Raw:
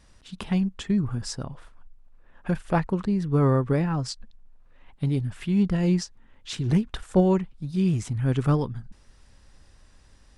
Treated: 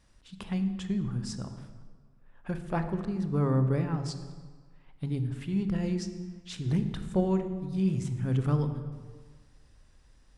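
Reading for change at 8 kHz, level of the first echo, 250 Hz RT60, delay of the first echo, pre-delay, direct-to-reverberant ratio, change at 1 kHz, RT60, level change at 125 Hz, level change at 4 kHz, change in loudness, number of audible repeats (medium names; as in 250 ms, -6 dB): -7.0 dB, no echo, 1.4 s, no echo, 27 ms, 8.5 dB, -7.0 dB, 1.6 s, -4.5 dB, -7.0 dB, -5.5 dB, no echo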